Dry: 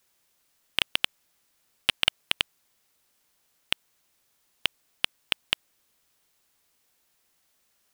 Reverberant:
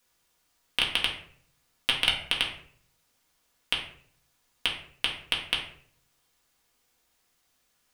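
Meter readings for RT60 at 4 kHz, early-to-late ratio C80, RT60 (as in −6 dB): 0.40 s, 10.5 dB, 0.55 s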